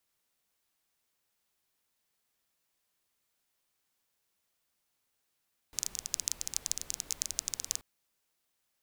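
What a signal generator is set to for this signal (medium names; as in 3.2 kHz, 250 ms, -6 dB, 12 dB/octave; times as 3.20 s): rain from filtered ticks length 2.08 s, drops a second 16, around 6.4 kHz, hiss -16 dB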